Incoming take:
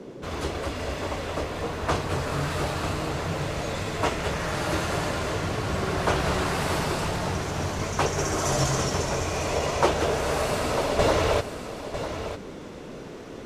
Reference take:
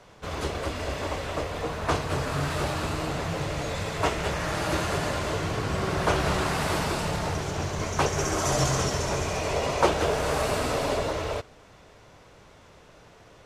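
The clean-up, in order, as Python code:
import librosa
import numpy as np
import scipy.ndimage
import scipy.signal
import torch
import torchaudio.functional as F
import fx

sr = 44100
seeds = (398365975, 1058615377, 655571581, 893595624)

y = fx.fix_declip(x, sr, threshold_db=-9.0)
y = fx.noise_reduce(y, sr, print_start_s=12.79, print_end_s=13.29, reduce_db=15.0)
y = fx.fix_echo_inverse(y, sr, delay_ms=950, level_db=-10.5)
y = fx.fix_level(y, sr, at_s=10.99, step_db=-7.5)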